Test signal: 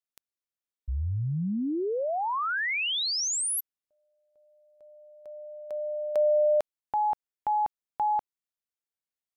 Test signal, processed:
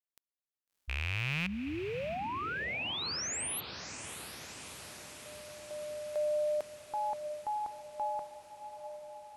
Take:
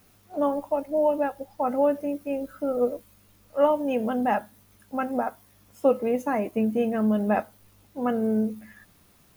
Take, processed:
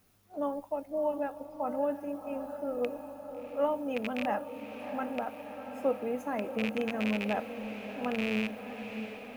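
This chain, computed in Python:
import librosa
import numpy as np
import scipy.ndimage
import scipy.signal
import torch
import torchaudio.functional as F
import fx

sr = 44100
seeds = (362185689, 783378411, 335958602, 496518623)

y = fx.rattle_buzz(x, sr, strikes_db=-28.0, level_db=-14.0)
y = fx.echo_diffused(y, sr, ms=678, feedback_pct=71, wet_db=-10.0)
y = y * librosa.db_to_amplitude(-8.5)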